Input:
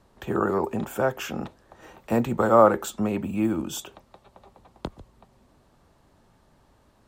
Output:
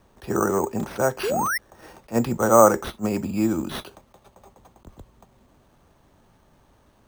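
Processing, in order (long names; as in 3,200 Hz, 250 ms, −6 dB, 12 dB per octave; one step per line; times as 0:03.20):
sound drawn into the spectrogram rise, 0:01.23–0:01.58, 360–2,100 Hz −26 dBFS
bad sample-rate conversion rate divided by 6×, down none, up hold
level that may rise only so fast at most 390 dB per second
level +2 dB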